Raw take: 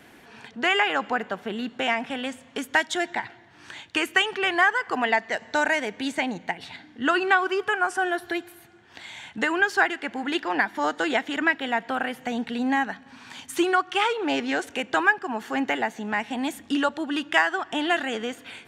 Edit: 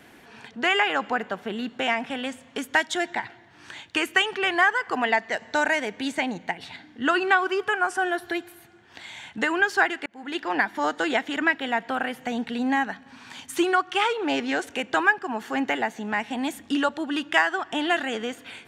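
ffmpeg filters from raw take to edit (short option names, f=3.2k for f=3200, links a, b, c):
-filter_complex "[0:a]asplit=2[a][b];[a]atrim=end=10.06,asetpts=PTS-STARTPTS,afade=t=out:st=10.056:d=0.004:c=hsin[c];[b]atrim=start=10.06,asetpts=PTS-STARTPTS,afade=t=in:d=0.45[d];[c][d]concat=n=2:v=0:a=1"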